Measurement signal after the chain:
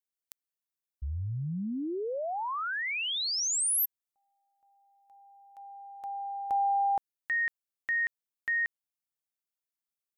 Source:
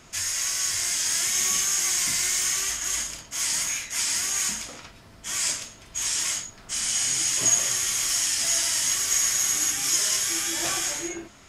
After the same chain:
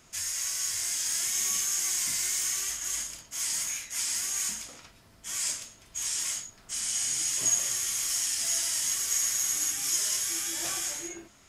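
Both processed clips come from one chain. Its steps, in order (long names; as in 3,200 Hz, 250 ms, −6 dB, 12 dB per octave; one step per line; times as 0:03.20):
high-shelf EQ 7,400 Hz +8.5 dB
level −8.5 dB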